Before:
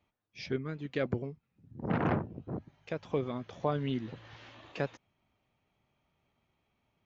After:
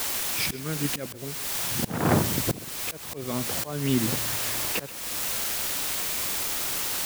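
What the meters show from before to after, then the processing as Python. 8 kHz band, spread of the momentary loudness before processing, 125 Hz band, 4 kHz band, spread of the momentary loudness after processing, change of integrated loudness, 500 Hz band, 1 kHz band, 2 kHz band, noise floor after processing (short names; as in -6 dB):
n/a, 18 LU, +6.5 dB, +20.5 dB, 7 LU, +9.5 dB, +2.5 dB, +7.0 dB, +11.5 dB, -40 dBFS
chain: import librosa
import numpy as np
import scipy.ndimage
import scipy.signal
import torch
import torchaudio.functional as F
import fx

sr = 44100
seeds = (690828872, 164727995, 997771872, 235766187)

p1 = fx.rider(x, sr, range_db=4, speed_s=0.5)
p2 = x + F.gain(torch.from_numpy(p1), 1.5).numpy()
p3 = fx.quant_dither(p2, sr, seeds[0], bits=6, dither='triangular')
p4 = fx.auto_swell(p3, sr, attack_ms=435.0)
p5 = p4 + 10.0 ** (-18.0 / 20.0) * np.pad(p4, (int(131 * sr / 1000.0), 0))[:len(p4)]
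y = F.gain(torch.from_numpy(p5), 7.0).numpy()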